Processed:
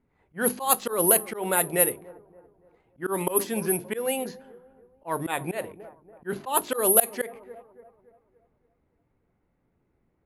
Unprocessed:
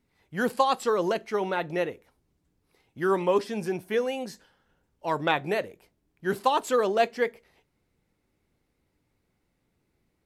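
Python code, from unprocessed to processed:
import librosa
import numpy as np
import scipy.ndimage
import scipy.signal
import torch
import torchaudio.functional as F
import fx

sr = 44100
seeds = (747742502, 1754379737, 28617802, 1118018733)

p1 = fx.hum_notches(x, sr, base_hz=50, count=7)
p2 = p1 + fx.echo_wet_lowpass(p1, sr, ms=285, feedback_pct=44, hz=1100.0, wet_db=-20.5, dry=0)
p3 = (np.kron(scipy.signal.resample_poly(p2, 1, 4), np.eye(4)[0]) * 4)[:len(p2)]
p4 = fx.auto_swell(p3, sr, attack_ms=147.0)
p5 = fx.env_lowpass(p4, sr, base_hz=1500.0, full_db=-15.5)
y = p5 * 10.0 ** (3.0 / 20.0)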